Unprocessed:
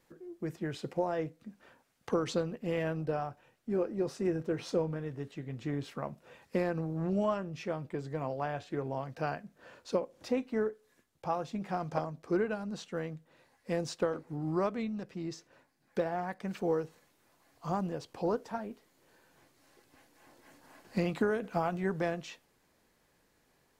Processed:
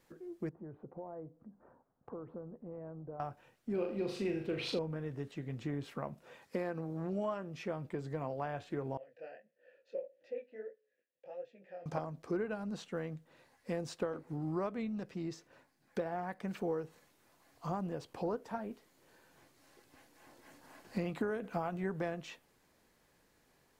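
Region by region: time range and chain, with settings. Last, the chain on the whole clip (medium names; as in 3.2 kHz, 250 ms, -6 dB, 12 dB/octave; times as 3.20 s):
0.49–3.20 s: low-pass 1.1 kHz 24 dB/octave + compression 2:1, threshold -53 dBFS
3.74–4.79 s: high-order bell 3.2 kHz +12 dB 1.3 oct + flutter echo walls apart 6.8 m, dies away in 0.43 s
6.25–7.66 s: bass shelf 130 Hz -10.5 dB + band-stop 2.7 kHz, Q 25
8.97–11.86 s: vowel filter e + chorus 1.6 Hz, delay 16 ms, depth 8 ms
whole clip: dynamic bell 5.5 kHz, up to -5 dB, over -58 dBFS, Q 0.9; compression 2:1, threshold -36 dBFS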